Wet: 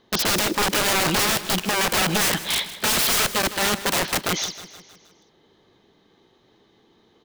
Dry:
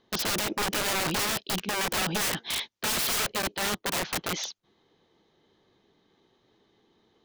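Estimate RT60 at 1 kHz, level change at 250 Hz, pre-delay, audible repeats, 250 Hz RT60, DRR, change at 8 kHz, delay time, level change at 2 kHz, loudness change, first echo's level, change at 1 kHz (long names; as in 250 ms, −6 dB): no reverb audible, +7.5 dB, no reverb audible, 4, no reverb audible, no reverb audible, +7.0 dB, 157 ms, +7.0 dB, +7.0 dB, −14.5 dB, +7.0 dB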